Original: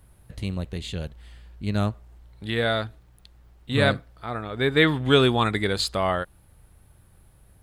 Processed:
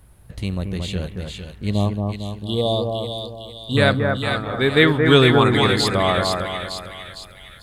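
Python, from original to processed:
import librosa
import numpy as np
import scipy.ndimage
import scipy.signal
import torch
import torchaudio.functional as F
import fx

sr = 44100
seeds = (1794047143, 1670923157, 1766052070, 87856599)

y = fx.brickwall_bandstop(x, sr, low_hz=1200.0, high_hz=2800.0, at=(1.7, 3.77))
y = fx.echo_split(y, sr, split_hz=1800.0, low_ms=226, high_ms=456, feedback_pct=52, wet_db=-4)
y = F.gain(torch.from_numpy(y), 4.0).numpy()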